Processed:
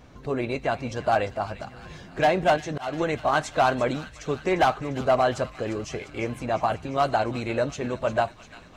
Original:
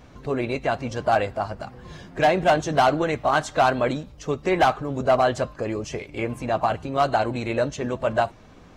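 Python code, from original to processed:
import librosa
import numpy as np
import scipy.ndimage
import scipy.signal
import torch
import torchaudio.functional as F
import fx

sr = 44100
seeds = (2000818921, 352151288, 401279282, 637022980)

y = fx.auto_swell(x, sr, attack_ms=309.0, at=(2.56, 2.97), fade=0.02)
y = fx.echo_wet_highpass(y, sr, ms=349, feedback_pct=67, hz=1800.0, wet_db=-12.0)
y = y * 10.0 ** (-2.0 / 20.0)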